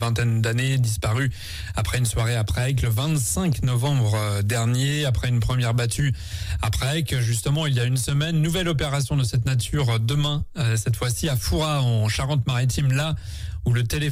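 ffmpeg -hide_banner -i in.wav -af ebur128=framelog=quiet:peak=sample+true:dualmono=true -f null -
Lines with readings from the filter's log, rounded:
Integrated loudness:
  I:         -19.8 LUFS
  Threshold: -29.9 LUFS
Loudness range:
  LRA:         0.9 LU
  Threshold: -39.8 LUFS
  LRA low:   -20.1 LUFS
  LRA high:  -19.3 LUFS
Sample peak:
  Peak:      -12.7 dBFS
True peak:
  Peak:      -12.7 dBFS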